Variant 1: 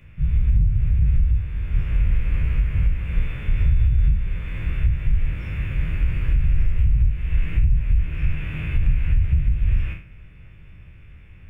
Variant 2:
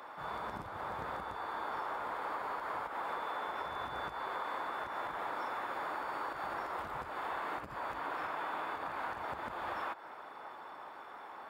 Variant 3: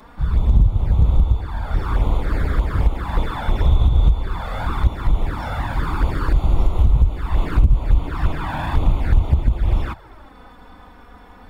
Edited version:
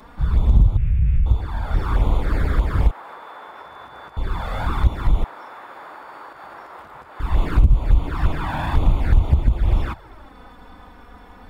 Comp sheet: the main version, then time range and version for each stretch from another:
3
0.77–1.26 from 1
2.91–4.17 from 2
5.24–7.2 from 2

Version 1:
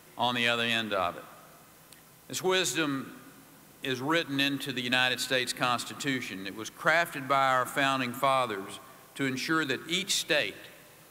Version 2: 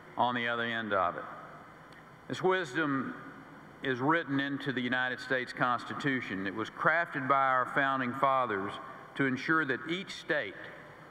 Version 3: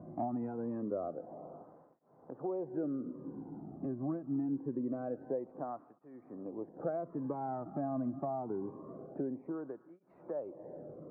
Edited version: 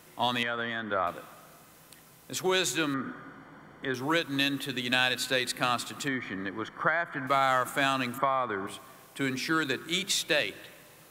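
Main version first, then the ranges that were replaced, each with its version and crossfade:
1
0.43–1.07 from 2
2.94–3.94 from 2
6.08–7.27 from 2
8.18–8.67 from 2
not used: 3

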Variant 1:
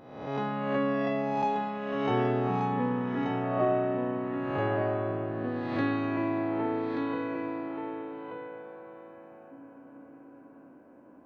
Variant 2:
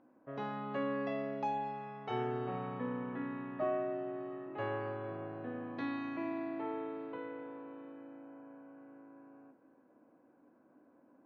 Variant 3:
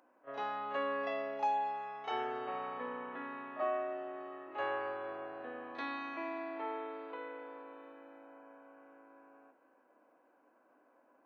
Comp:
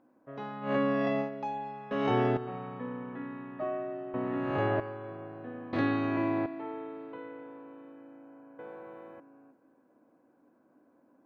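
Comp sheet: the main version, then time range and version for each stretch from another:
2
0.66–1.25 from 1, crossfade 0.10 s
1.91–2.37 from 1
4.14–4.8 from 1
5.73–6.46 from 1
8.59–9.2 from 1
not used: 3

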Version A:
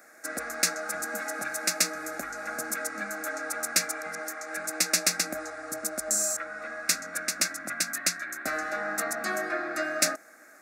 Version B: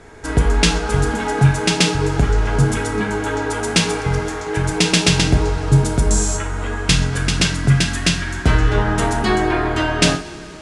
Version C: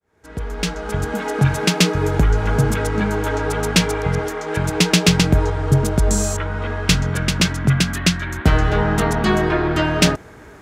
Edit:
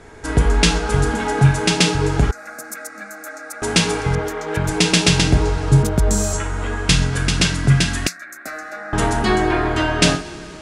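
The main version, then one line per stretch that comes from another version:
B
2.31–3.62 from A
4.15–4.69 from C
5.83–6.33 from C
8.07–8.93 from A

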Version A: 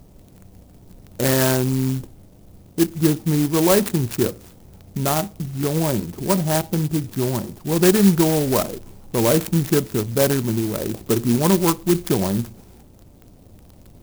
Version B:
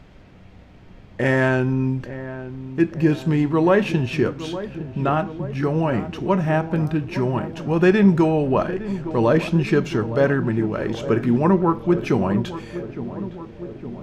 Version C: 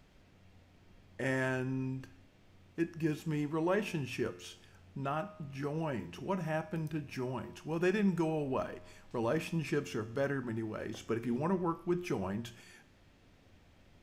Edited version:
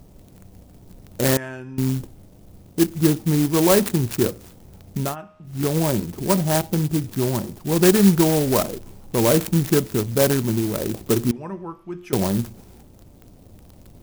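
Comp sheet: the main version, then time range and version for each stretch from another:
A
1.37–1.78 from C
5.08–5.52 from C, crossfade 0.16 s
11.31–12.13 from C
not used: B

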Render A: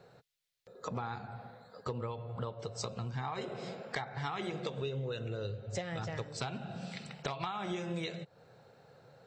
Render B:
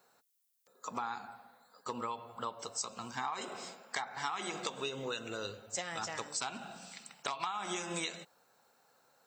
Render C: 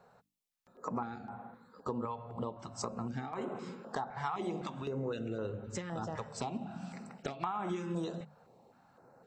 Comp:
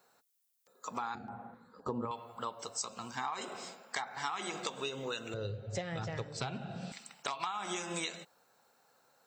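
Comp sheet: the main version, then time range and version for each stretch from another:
B
1.15–2.11 from C
5.34–6.92 from A

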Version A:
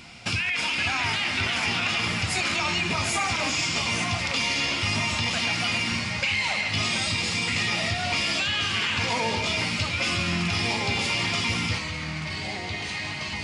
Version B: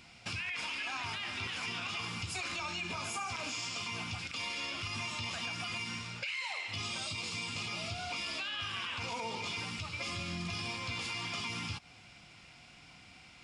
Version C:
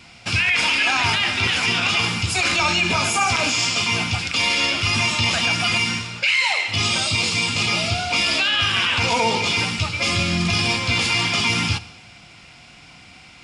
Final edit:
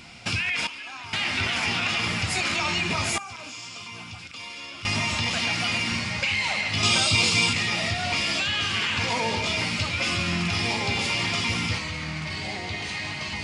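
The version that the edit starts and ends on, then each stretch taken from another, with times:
A
0.67–1.13 from B
3.18–4.85 from B
6.83–7.53 from C

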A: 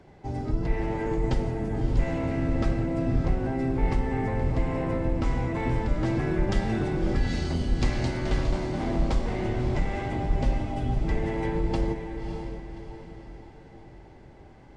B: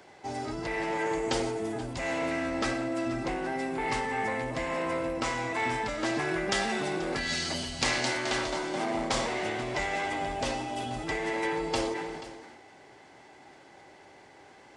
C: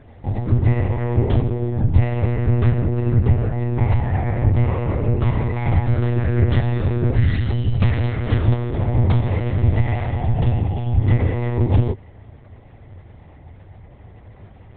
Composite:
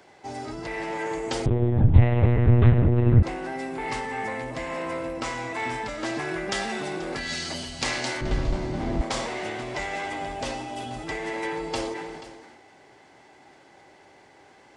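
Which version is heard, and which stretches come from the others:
B
1.46–3.23 from C
8.21–9.01 from A

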